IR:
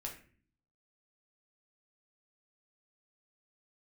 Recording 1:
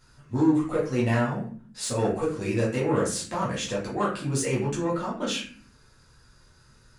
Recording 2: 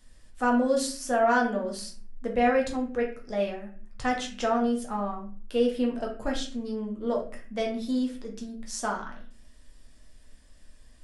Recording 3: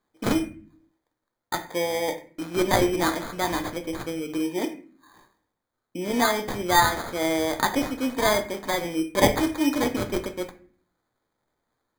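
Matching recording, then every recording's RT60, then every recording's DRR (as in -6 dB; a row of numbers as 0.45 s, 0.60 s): 2; 0.45 s, 0.45 s, 0.45 s; -7.0 dB, -1.0 dB, 6.5 dB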